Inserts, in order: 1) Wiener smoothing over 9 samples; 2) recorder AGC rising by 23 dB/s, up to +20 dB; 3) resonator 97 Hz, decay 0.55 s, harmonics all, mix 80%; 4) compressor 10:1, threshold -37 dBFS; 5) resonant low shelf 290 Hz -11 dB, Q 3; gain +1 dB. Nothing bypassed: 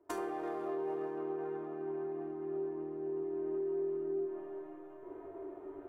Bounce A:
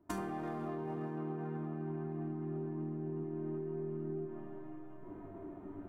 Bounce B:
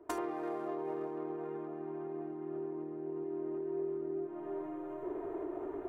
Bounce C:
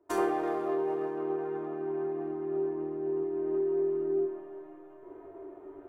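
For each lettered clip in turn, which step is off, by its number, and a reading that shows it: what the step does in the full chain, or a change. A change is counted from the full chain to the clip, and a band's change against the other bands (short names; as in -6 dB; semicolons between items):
5, 125 Hz band +17.0 dB; 3, 500 Hz band -3.5 dB; 4, mean gain reduction 4.5 dB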